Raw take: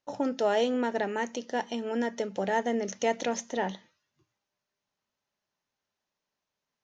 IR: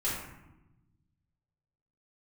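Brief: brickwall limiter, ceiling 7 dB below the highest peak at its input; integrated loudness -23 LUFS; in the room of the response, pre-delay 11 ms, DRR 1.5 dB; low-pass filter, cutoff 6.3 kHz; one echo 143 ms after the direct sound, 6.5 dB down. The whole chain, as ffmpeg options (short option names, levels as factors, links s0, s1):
-filter_complex "[0:a]lowpass=6300,alimiter=limit=0.075:level=0:latency=1,aecho=1:1:143:0.473,asplit=2[s0][s1];[1:a]atrim=start_sample=2205,adelay=11[s2];[s1][s2]afir=irnorm=-1:irlink=0,volume=0.376[s3];[s0][s3]amix=inputs=2:normalize=0,volume=2.24"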